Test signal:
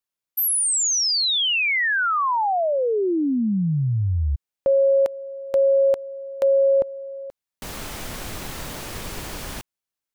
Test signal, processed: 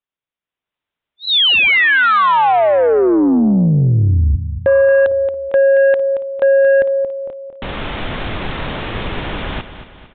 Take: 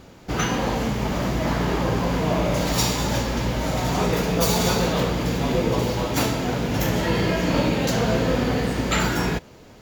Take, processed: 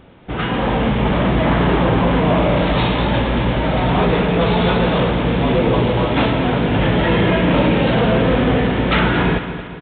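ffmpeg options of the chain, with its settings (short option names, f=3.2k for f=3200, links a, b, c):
-af "dynaudnorm=f=400:g=3:m=10dB,aecho=1:1:227|454|681|908|1135:0.251|0.123|0.0603|0.0296|0.0145,aresample=8000,aeval=exprs='0.841*sin(PI/2*1.58*val(0)/0.841)':c=same,aresample=44100,volume=-7dB"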